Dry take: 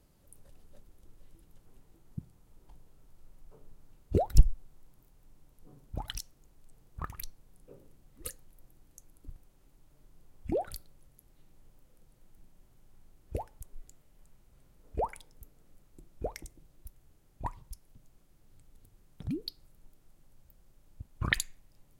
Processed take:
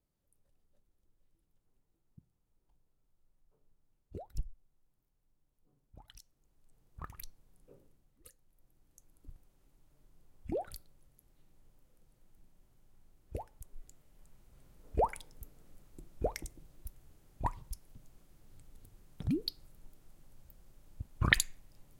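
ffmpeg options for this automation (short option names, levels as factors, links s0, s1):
-af "volume=5.01,afade=t=in:st=6.09:d=1.05:silence=0.237137,afade=t=out:st=7.74:d=0.54:silence=0.266073,afade=t=in:st=8.28:d=1.03:silence=0.237137,afade=t=in:st=13.42:d=1.6:silence=0.421697"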